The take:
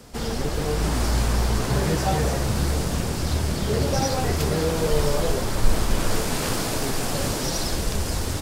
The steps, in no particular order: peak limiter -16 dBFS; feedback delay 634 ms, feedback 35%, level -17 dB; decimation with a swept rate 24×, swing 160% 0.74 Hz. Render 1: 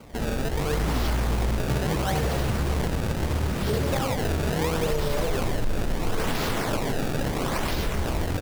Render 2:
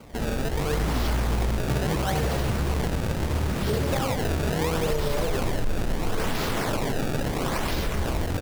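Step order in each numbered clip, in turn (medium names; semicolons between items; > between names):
peak limiter > decimation with a swept rate > feedback delay; feedback delay > peak limiter > decimation with a swept rate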